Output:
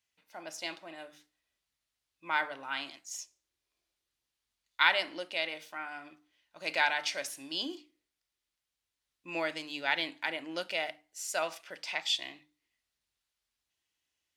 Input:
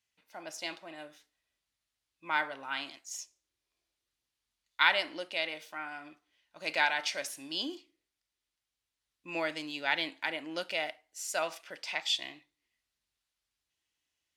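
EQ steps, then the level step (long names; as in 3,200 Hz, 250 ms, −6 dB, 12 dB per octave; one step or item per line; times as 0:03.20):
mains-hum notches 50/100/150/200/250/300 Hz
0.0 dB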